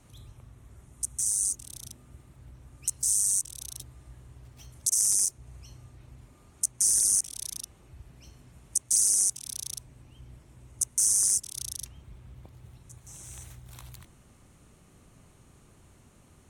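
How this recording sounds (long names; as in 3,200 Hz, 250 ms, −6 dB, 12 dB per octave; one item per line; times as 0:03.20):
background noise floor −58 dBFS
spectral slope −0.5 dB per octave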